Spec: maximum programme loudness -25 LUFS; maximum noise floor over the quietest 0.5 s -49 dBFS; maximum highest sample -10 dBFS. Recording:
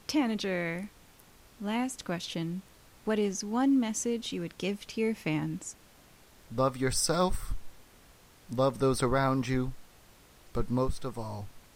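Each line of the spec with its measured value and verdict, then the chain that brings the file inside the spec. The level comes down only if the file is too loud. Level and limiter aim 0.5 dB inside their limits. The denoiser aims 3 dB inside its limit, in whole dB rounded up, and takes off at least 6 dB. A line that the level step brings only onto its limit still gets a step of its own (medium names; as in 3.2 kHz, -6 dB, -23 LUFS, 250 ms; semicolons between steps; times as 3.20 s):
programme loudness -31.5 LUFS: pass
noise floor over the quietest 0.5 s -57 dBFS: pass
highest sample -14.0 dBFS: pass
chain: none needed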